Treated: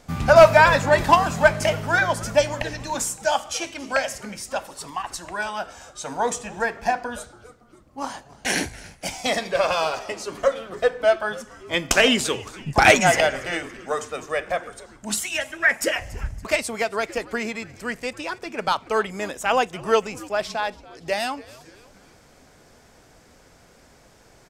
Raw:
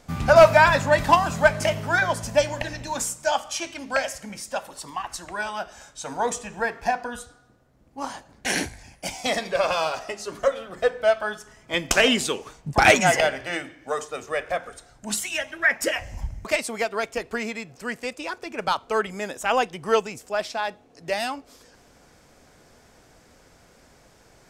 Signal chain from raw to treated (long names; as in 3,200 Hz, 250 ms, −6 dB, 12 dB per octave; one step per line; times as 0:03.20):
echo with shifted repeats 282 ms, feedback 52%, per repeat −130 Hz, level −20.5 dB
level +1.5 dB